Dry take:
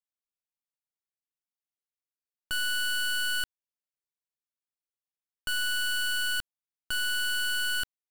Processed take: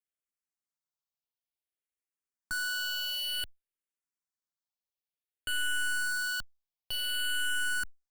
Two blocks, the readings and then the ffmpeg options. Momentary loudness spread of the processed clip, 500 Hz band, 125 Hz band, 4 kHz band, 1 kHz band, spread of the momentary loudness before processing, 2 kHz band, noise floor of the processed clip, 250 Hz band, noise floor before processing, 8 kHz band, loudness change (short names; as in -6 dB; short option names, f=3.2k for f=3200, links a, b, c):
7 LU, -3.5 dB, n/a, -3.5 dB, -2.5 dB, 6 LU, -2.5 dB, under -85 dBFS, -2.5 dB, under -85 dBFS, -2.5 dB, -3.0 dB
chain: -filter_complex "[0:a]asplit=2[a][b];[b]afreqshift=-0.55[c];[a][c]amix=inputs=2:normalize=1"